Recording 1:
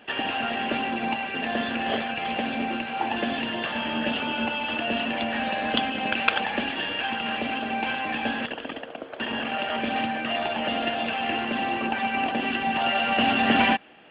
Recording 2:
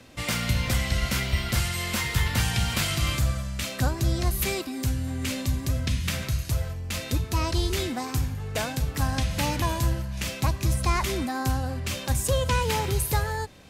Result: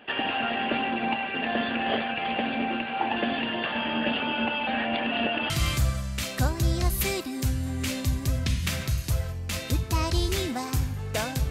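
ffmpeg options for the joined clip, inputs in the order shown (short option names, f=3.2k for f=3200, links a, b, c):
-filter_complex "[0:a]apad=whole_dur=11.5,atrim=end=11.5,asplit=2[a][b];[a]atrim=end=4.672[c];[b]atrim=start=4.668:end=5.502,asetpts=PTS-STARTPTS,areverse[d];[1:a]atrim=start=2.908:end=8.91[e];[c][d]acrossfade=d=0.004:c1=hsin:c2=hsin[f];[f][e]acrossfade=d=0.004:c1=hsin:c2=hsin"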